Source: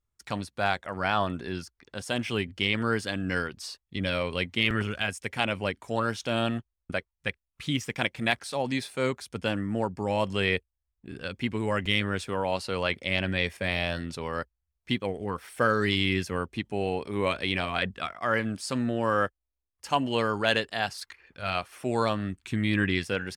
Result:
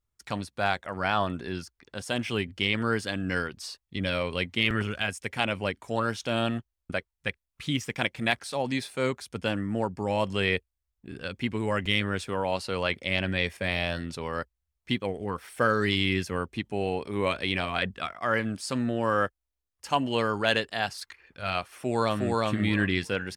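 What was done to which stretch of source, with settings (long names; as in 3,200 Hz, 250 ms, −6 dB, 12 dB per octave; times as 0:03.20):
0:21.74–0:22.37: delay throw 360 ms, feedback 15%, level −1 dB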